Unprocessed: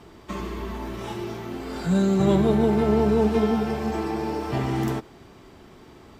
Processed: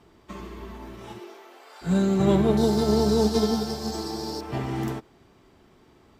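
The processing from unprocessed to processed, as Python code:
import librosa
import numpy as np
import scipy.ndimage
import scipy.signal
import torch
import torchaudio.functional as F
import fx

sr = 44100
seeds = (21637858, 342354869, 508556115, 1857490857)

y = fx.highpass(x, sr, hz=fx.line((1.18, 300.0), (1.81, 670.0)), slope=24, at=(1.18, 1.81), fade=0.02)
y = fx.high_shelf_res(y, sr, hz=3400.0, db=10.5, q=3.0, at=(2.57, 4.41))
y = fx.upward_expand(y, sr, threshold_db=-34.0, expansion=1.5)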